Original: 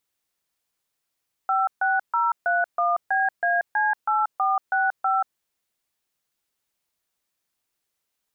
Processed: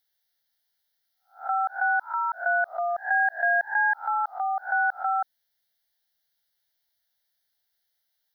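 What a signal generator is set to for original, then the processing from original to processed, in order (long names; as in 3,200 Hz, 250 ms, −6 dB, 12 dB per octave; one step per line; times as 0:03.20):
touch tones "56031BAC8465", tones 183 ms, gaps 140 ms, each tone −21.5 dBFS
peak hold with a rise ahead of every peak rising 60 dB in 0.30 s
tilt shelving filter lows −4.5 dB, about 1,200 Hz
phaser with its sweep stopped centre 1,700 Hz, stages 8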